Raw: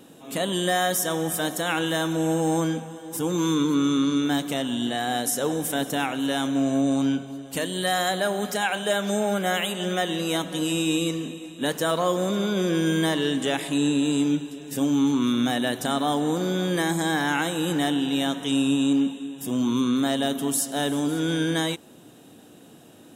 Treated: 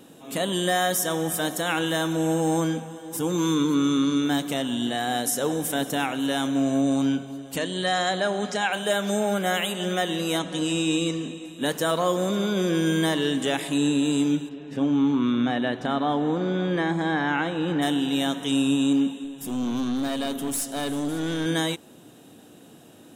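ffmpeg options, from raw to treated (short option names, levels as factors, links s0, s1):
-filter_complex "[0:a]asettb=1/sr,asplit=3[s0][s1][s2];[s0]atrim=end=7.564[s3];[s1]atrim=start=7.56:end=8.73,asetpts=PTS-STARTPTS,afade=t=in:d=0.004:c=qsin,afade=t=out:st=1.166:d=0.004:c=qsin,lowpass=f=7500:w=0.5412,lowpass=f=7500:w=1.3066[s4];[s2]atrim=start=8.726[s5];[s3][s4]acrossfade=d=0.004:c1=hsin:c2=qsin[s6];[s6][s5]acrossfade=d=0.004:c1=qsin:c2=hsin,asettb=1/sr,asplit=3[s7][s8][s9];[s7]atrim=end=10.394[s10];[s8]atrim=start=10.39:end=11.45,asetpts=PTS-STARTPTS,afade=t=in:d=0.004:c=qsin,afade=t=out:st=1.056:d=0.004:c=qsin,lowpass=f=8900:w=0.5412,lowpass=f=8900:w=1.3066[s11];[s9]atrim=start=11.446[s12];[s10][s11]acrossfade=d=0.004:c1=hsin:c2=qsin[s13];[s13][s12]acrossfade=d=0.004:c1=qsin:c2=hsin,asplit=3[s14][s15][s16];[s14]afade=t=out:st=14.48:d=0.02[s17];[s15]lowpass=2700,afade=t=in:st=14.48:d=0.02,afade=t=out:st=17.81:d=0.02[s18];[s16]afade=t=in:st=17.81:d=0.02[s19];[s17][s18][s19]amix=inputs=3:normalize=0,asettb=1/sr,asplit=3[s20][s21][s22];[s20]atrim=end=19.244[s23];[s21]atrim=start=19.24:end=21.46,asetpts=PTS-STARTPTS,afade=t=in:d=0.004:c=qsin,afade=t=out:st=2.216:d=0.004:c=qsin,aeval=exprs='(tanh(12.6*val(0)+0.35)-tanh(0.35))/12.6':c=same[s24];[s22]atrim=start=21.456[s25];[s23][s24]acrossfade=d=0.004:c1=hsin:c2=qsin[s26];[s26][s25]acrossfade=d=0.004:c1=qsin:c2=hsin"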